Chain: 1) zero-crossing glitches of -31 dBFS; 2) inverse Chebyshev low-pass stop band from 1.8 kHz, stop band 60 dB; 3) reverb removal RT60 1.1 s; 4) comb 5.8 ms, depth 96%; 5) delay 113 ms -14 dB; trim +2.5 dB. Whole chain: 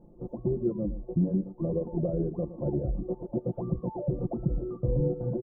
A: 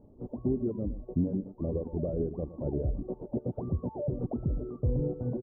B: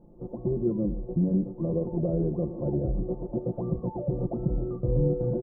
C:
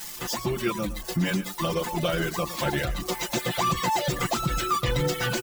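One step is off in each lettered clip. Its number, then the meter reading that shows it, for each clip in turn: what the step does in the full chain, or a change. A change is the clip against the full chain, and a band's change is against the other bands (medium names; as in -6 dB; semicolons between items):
4, loudness change -2.5 LU; 3, loudness change +2.0 LU; 2, 1 kHz band +20.0 dB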